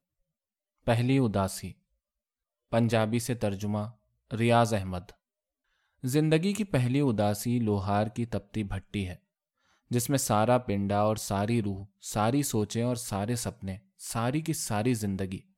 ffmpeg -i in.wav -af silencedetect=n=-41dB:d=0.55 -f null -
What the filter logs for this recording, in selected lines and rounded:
silence_start: 0.00
silence_end: 0.87 | silence_duration: 0.87
silence_start: 1.72
silence_end: 2.72 | silence_duration: 1.01
silence_start: 5.10
silence_end: 6.04 | silence_duration: 0.93
silence_start: 9.15
silence_end: 9.91 | silence_duration: 0.76